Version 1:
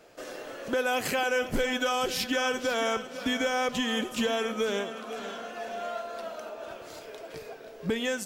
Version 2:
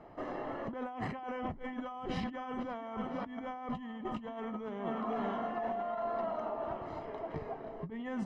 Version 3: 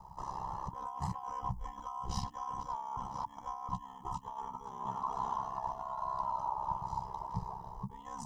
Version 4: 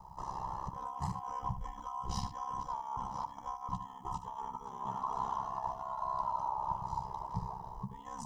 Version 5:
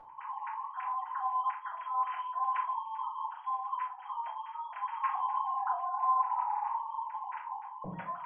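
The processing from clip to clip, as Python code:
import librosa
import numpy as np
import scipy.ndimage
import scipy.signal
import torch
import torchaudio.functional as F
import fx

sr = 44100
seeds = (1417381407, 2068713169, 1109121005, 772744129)

y1 = scipy.signal.sosfilt(scipy.signal.butter(2, 1100.0, 'lowpass', fs=sr, output='sos'), x)
y1 = y1 + 0.64 * np.pad(y1, (int(1.0 * sr / 1000.0), 0))[:len(y1)]
y1 = fx.over_compress(y1, sr, threshold_db=-39.0, ratio=-1.0)
y2 = fx.curve_eq(y1, sr, hz=(150.0, 230.0, 370.0, 660.0, 940.0, 1400.0, 2300.0, 5800.0), db=(0, -26, -20, -22, 7, -19, -24, 8))
y2 = y2 * np.sin(2.0 * np.pi * 33.0 * np.arange(len(y2)) / sr)
y2 = y2 * 10.0 ** (9.5 / 20.0)
y3 = y2 + 10.0 ** (-11.5 / 20.0) * np.pad(y2, (int(75 * sr / 1000.0), 0))[:len(y2)]
y4 = fx.sine_speech(y3, sr)
y4 = fx.room_shoebox(y4, sr, seeds[0], volume_m3=170.0, walls='furnished', distance_m=5.9)
y4 = y4 * 10.0 ** (-5.0 / 20.0)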